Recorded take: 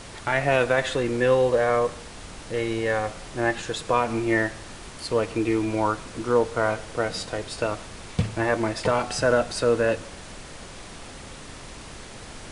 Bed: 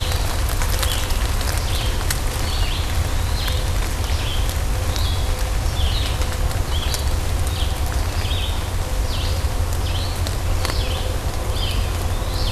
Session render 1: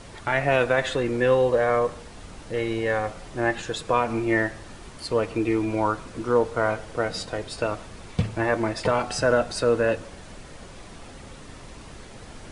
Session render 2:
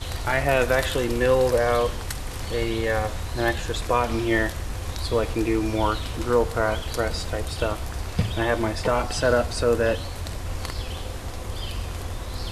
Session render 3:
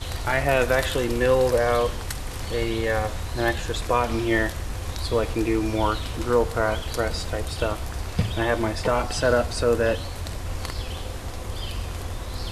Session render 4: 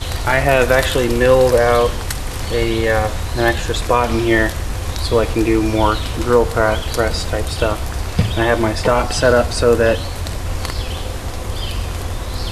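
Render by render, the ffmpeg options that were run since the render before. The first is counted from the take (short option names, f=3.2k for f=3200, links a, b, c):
-af "afftdn=nr=6:nf=-42"
-filter_complex "[1:a]volume=-10dB[a];[0:a][a]amix=inputs=2:normalize=0"
-af anull
-af "volume=8dB,alimiter=limit=-2dB:level=0:latency=1"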